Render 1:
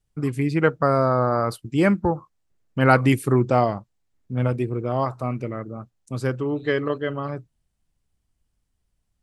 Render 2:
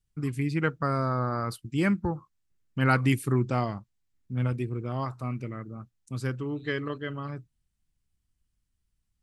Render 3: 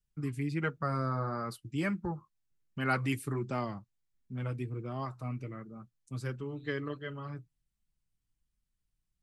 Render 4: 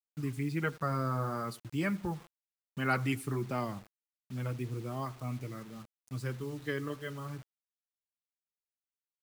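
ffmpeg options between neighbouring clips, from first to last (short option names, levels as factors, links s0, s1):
-af "equalizer=f=600:t=o:w=1.5:g=-9.5,volume=0.668"
-filter_complex "[0:a]acrossover=split=280|3100[s0][s1][s2];[s0]alimiter=level_in=1.26:limit=0.0631:level=0:latency=1,volume=0.794[s3];[s3][s1][s2]amix=inputs=3:normalize=0,flanger=delay=4.8:depth=2.3:regen=-35:speed=1.4:shape=sinusoidal,volume=0.794"
-filter_complex "[0:a]asplit=2[s0][s1];[s1]adelay=86,lowpass=f=2200:p=1,volume=0.0794,asplit=2[s2][s3];[s3]adelay=86,lowpass=f=2200:p=1,volume=0.5,asplit=2[s4][s5];[s5]adelay=86,lowpass=f=2200:p=1,volume=0.5[s6];[s0][s2][s4][s6]amix=inputs=4:normalize=0,acrusher=bits=8:mix=0:aa=0.000001"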